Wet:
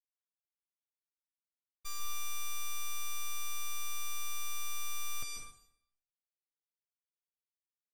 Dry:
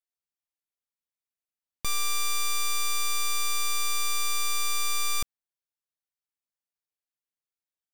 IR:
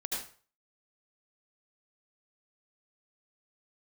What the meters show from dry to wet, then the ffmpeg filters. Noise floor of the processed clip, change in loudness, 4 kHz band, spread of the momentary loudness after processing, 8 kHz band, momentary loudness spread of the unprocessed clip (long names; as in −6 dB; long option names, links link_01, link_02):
below −85 dBFS, −12.0 dB, −13.5 dB, 4 LU, −10.5 dB, 3 LU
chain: -filter_complex "[0:a]agate=range=-33dB:threshold=-18dB:ratio=3:detection=peak,asplit=2[link_01][link_02];[1:a]atrim=start_sample=2205,asetrate=25578,aresample=44100,adelay=10[link_03];[link_02][link_03]afir=irnorm=-1:irlink=0,volume=-6.5dB[link_04];[link_01][link_04]amix=inputs=2:normalize=0,volume=-1dB"